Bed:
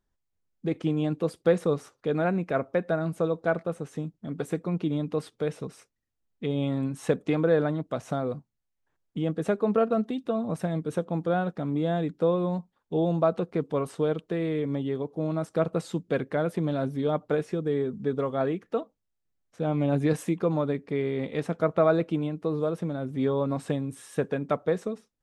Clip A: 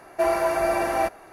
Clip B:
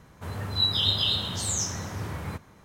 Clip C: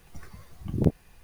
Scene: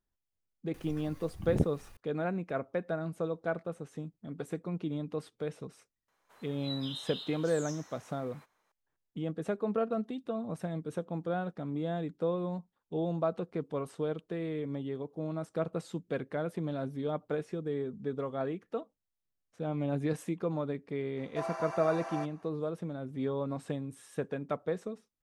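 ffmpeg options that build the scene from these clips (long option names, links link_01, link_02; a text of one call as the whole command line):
ffmpeg -i bed.wav -i cue0.wav -i cue1.wav -i cue2.wav -filter_complex "[0:a]volume=-7.5dB[link_01];[3:a]acompressor=mode=upward:threshold=-38dB:ratio=2.5:attack=3.2:release=140:knee=2.83:detection=peak[link_02];[2:a]highpass=590[link_03];[1:a]highpass=330,equalizer=frequency=370:width_type=q:width=4:gain=-7,equalizer=frequency=1100:width_type=q:width=4:gain=7,equalizer=frequency=2200:width_type=q:width=4:gain=-3,equalizer=frequency=6000:width_type=q:width=4:gain=5,lowpass=frequency=8600:width=0.5412,lowpass=frequency=8600:width=1.3066[link_04];[link_02]atrim=end=1.23,asetpts=PTS-STARTPTS,volume=-6dB,afade=type=in:duration=0.004:curve=hsin,afade=type=out:start_time=1.226:duration=0.004:curve=hsin,adelay=740[link_05];[link_03]atrim=end=2.64,asetpts=PTS-STARTPTS,volume=-17.5dB,afade=type=in:duration=0.004:curve=hsin,afade=type=out:start_time=2.636:duration=0.004:curve=hsin,adelay=6080[link_06];[link_04]atrim=end=1.32,asetpts=PTS-STARTPTS,volume=-15.5dB,afade=type=in:duration=0.004:curve=hsin,afade=type=out:start_time=1.316:duration=0.004:curve=hsin,adelay=21170[link_07];[link_01][link_05][link_06][link_07]amix=inputs=4:normalize=0" out.wav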